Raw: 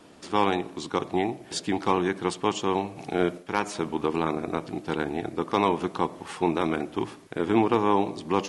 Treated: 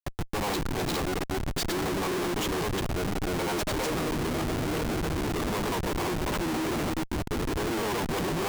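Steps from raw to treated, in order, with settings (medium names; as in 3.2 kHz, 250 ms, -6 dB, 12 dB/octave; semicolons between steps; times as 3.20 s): granulator, spray 314 ms; gate with hold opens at -38 dBFS; Schmitt trigger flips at -38 dBFS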